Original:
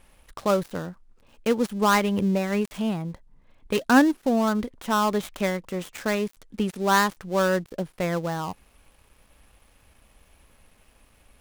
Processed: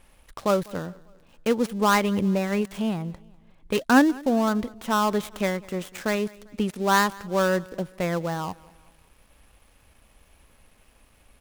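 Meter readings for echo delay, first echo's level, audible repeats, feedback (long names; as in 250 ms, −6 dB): 198 ms, −23.0 dB, 2, 45%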